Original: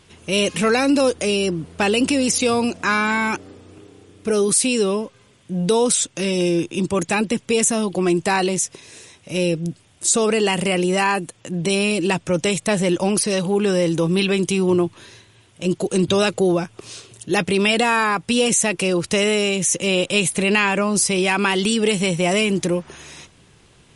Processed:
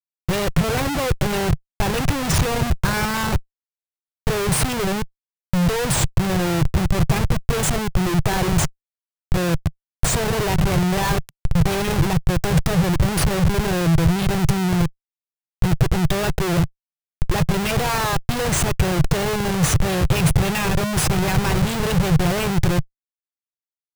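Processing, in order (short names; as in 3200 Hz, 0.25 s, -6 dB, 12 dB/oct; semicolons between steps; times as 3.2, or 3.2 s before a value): bin magnitudes rounded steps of 15 dB; Schmitt trigger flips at -20.5 dBFS; resonant low shelf 180 Hz +7 dB, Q 3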